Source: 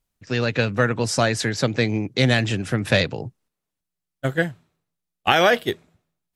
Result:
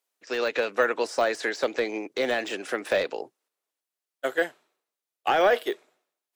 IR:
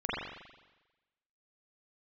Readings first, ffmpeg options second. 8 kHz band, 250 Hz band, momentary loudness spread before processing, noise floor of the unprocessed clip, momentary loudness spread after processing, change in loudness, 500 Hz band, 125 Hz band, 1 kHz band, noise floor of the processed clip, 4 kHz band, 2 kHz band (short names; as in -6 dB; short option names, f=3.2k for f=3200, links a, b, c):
-11.0 dB, -11.0 dB, 11 LU, -84 dBFS, 11 LU, -5.0 dB, -2.0 dB, -31.0 dB, -3.0 dB, under -85 dBFS, -9.5 dB, -5.0 dB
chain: -af "highpass=f=370:w=0.5412,highpass=f=370:w=1.3066,deesser=0.85"